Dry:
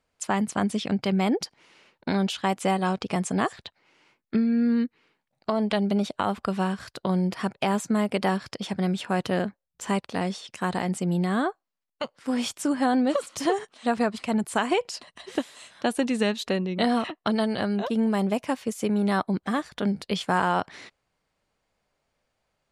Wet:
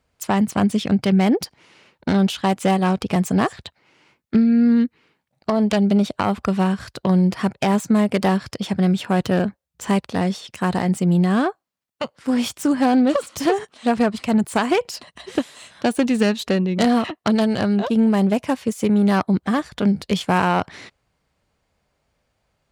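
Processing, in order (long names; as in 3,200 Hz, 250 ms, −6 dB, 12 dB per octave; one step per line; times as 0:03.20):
phase distortion by the signal itself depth 0.084 ms
high-pass filter 49 Hz
low-shelf EQ 130 Hz +11.5 dB
level +4.5 dB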